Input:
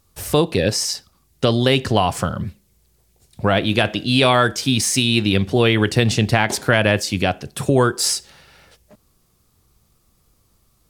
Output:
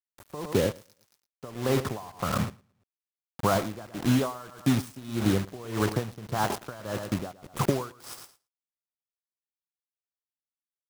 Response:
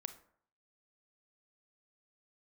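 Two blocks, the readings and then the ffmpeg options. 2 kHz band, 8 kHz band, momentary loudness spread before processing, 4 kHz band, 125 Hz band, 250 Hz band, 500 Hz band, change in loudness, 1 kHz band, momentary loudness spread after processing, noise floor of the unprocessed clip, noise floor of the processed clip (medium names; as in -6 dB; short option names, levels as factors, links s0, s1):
-17.0 dB, -16.0 dB, 8 LU, -19.0 dB, -10.5 dB, -9.0 dB, -11.5 dB, -11.5 dB, -10.5 dB, 13 LU, -62 dBFS, under -85 dBFS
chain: -af "highpass=60,highshelf=f=1700:t=q:w=3:g=-13,bandreject=f=7000:w=5.5,acompressor=threshold=0.126:ratio=12,acrusher=bits=4:mix=0:aa=0.000001,aecho=1:1:112|224|336:0.224|0.0627|0.0176,aeval=exprs='val(0)*pow(10,-20*(0.5-0.5*cos(2*PI*1.7*n/s))/20)':c=same"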